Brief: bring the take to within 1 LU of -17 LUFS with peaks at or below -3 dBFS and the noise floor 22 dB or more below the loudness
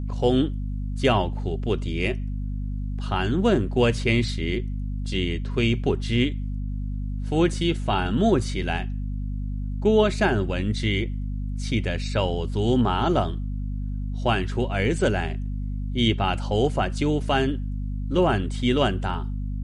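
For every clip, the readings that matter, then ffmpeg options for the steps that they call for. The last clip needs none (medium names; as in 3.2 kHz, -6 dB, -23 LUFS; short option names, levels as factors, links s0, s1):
hum 50 Hz; highest harmonic 250 Hz; hum level -26 dBFS; loudness -25.0 LUFS; peak level -7.0 dBFS; loudness target -17.0 LUFS
-> -af "bandreject=f=50:t=h:w=4,bandreject=f=100:t=h:w=4,bandreject=f=150:t=h:w=4,bandreject=f=200:t=h:w=4,bandreject=f=250:t=h:w=4"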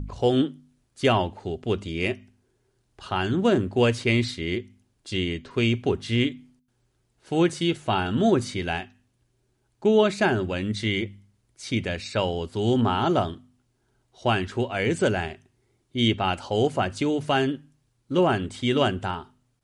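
hum not found; loudness -25.0 LUFS; peak level -7.5 dBFS; loudness target -17.0 LUFS
-> -af "volume=2.51,alimiter=limit=0.708:level=0:latency=1"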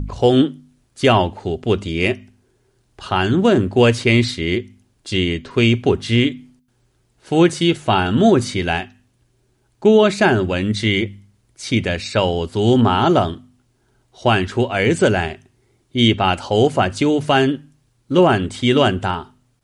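loudness -17.5 LUFS; peak level -3.0 dBFS; noise floor -63 dBFS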